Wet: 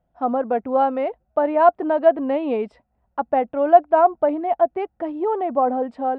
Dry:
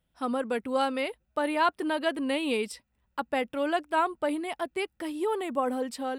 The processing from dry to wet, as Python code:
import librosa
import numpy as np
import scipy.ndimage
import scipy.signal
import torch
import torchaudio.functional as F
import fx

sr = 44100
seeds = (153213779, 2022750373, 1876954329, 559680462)

y = scipy.signal.sosfilt(scipy.signal.butter(2, 1200.0, 'lowpass', fs=sr, output='sos'), x)
y = fx.peak_eq(y, sr, hz=700.0, db=13.5, octaves=0.42)
y = y * 10.0 ** (5.0 / 20.0)